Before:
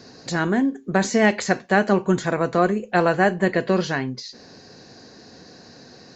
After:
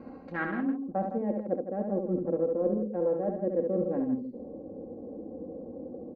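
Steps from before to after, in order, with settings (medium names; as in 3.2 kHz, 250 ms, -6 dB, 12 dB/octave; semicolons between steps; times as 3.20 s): local Wiener filter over 25 samples; comb 3.7 ms, depth 76%; reverse; compression 12:1, threshold -30 dBFS, peak gain reduction 20 dB; reverse; low-pass sweep 1.9 kHz -> 490 Hz, 0.46–1.23 s; loudspeakers at several distances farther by 24 m -5 dB, 55 m -9 dB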